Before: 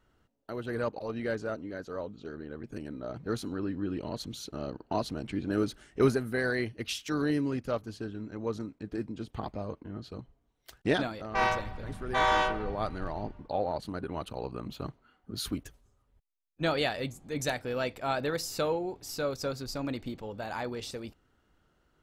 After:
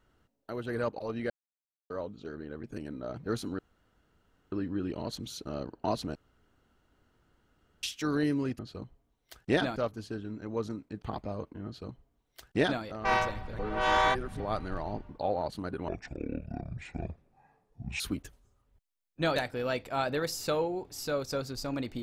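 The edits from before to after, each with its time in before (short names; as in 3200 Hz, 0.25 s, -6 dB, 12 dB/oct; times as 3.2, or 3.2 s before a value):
1.3–1.9 mute
3.59 insert room tone 0.93 s
5.22–6.9 room tone
8.92–9.32 cut
9.96–11.13 copy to 7.66
11.89–12.7 reverse
14.18–15.41 speed 58%
16.77–17.47 cut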